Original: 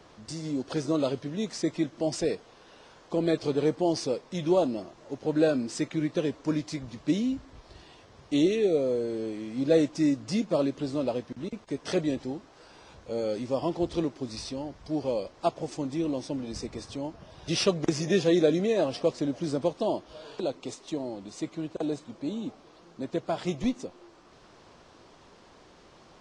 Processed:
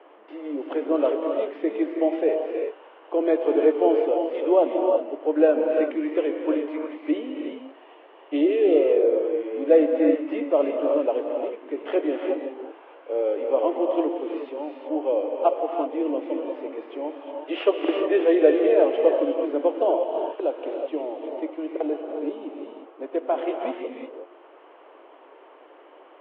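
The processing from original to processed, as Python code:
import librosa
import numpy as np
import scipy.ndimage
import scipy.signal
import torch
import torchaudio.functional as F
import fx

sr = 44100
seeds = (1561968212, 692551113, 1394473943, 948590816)

y = scipy.signal.sosfilt(scipy.signal.cheby1(5, 1.0, [290.0, 3100.0], 'bandpass', fs=sr, output='sos'), x)
y = fx.peak_eq(y, sr, hz=610.0, db=7.5, octaves=1.7)
y = fx.rev_gated(y, sr, seeds[0], gate_ms=390, shape='rising', drr_db=2.0)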